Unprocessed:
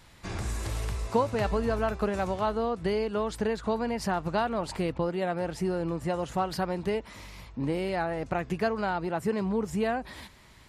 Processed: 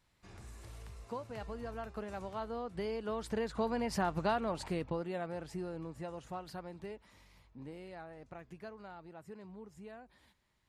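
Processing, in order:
source passing by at 0:04.05, 9 m/s, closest 6.4 metres
level −4 dB

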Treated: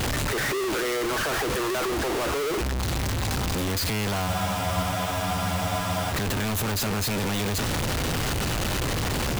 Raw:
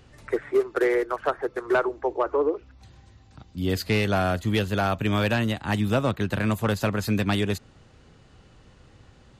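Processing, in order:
sign of each sample alone
frozen spectrum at 0:04.30, 1.83 s

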